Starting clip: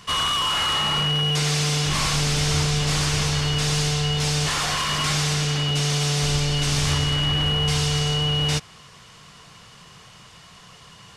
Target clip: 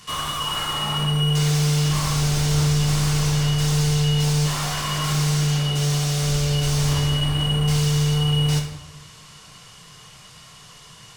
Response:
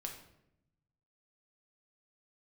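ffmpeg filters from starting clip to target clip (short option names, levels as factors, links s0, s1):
-filter_complex "[0:a]highshelf=f=5300:g=11,acrossover=split=1400[s0][s1];[s1]asoftclip=type=tanh:threshold=0.0501[s2];[s0][s2]amix=inputs=2:normalize=0[s3];[1:a]atrim=start_sample=2205,asetrate=38808,aresample=44100[s4];[s3][s4]afir=irnorm=-1:irlink=0"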